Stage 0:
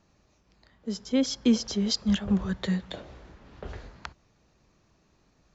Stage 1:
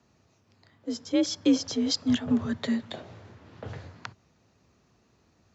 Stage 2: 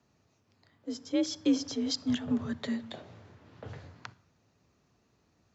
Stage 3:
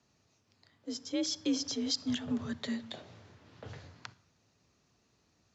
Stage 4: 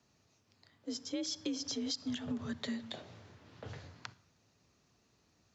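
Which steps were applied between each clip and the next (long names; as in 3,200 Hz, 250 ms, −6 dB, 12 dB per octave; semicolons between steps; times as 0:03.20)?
frequency shifter +46 Hz
rectangular room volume 2,800 cubic metres, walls furnished, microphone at 0.37 metres; level −5 dB
low-pass filter 6,700 Hz 12 dB per octave; high-shelf EQ 3,600 Hz +12 dB; in parallel at 0 dB: brickwall limiter −23 dBFS, peak gain reduction 10.5 dB; on the sum: level −9 dB
downward compressor 6 to 1, threshold −34 dBFS, peak gain reduction 8 dB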